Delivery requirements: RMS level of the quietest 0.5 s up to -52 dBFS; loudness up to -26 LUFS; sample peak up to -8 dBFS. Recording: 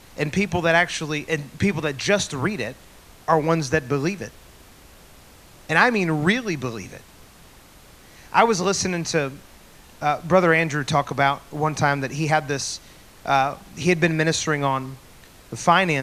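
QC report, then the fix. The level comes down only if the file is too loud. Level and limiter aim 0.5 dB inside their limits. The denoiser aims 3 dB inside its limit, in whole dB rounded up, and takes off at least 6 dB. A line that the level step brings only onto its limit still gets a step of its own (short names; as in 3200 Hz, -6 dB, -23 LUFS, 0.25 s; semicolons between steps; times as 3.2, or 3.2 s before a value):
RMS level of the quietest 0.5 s -48 dBFS: fail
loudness -21.5 LUFS: fail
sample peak -1.5 dBFS: fail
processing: gain -5 dB; limiter -8.5 dBFS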